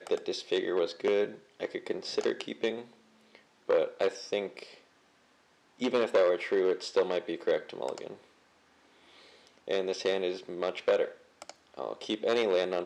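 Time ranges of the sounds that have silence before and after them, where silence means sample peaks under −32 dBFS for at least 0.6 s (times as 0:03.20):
0:03.70–0:04.63
0:05.82–0:08.10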